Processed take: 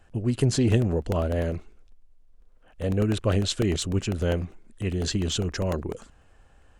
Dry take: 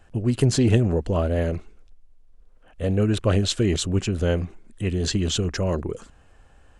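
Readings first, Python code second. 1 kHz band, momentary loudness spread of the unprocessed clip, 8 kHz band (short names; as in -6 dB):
-2.0 dB, 11 LU, -3.0 dB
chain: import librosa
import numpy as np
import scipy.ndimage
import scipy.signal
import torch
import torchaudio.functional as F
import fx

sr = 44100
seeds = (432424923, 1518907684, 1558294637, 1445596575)

y = fx.buffer_crackle(x, sr, first_s=0.72, period_s=0.1, block=64, kind='repeat')
y = F.gain(torch.from_numpy(y), -3.0).numpy()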